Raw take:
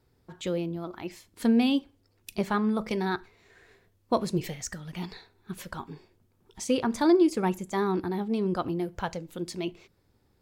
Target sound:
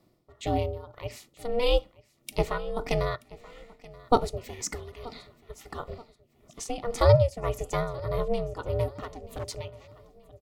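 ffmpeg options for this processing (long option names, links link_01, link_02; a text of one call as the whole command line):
ffmpeg -i in.wav -filter_complex "[0:a]aeval=exprs='val(0)*sin(2*PI*240*n/s)':channel_layout=same,asuperstop=centerf=1600:order=8:qfactor=6.6,tremolo=f=1.7:d=0.77,asplit=2[link_01][link_02];[link_02]aecho=0:1:930|1860|2790:0.0891|0.0392|0.0173[link_03];[link_01][link_03]amix=inputs=2:normalize=0,asettb=1/sr,asplit=3[link_04][link_05][link_06];[link_04]atrim=end=8.944[link_07];[link_05]atrim=start=8.94:end=9.46,asetpts=PTS-STARTPTS,afade=type=in:duration=0.004:curve=qsin,afade=type=out:start_time=0.516:duration=0.004:curve=qsin,asoftclip=type=hard:threshold=-36.5dB[link_08];[link_06]atrim=start=9.456[link_09];[link_07][link_08]acrossfade=duration=0.004:curve1=hsin:curve2=qsin[link_10];[link_10][link_09]acrossfade=duration=0.004:curve1=qsin:curve2=hsin,volume=6.5dB" out.wav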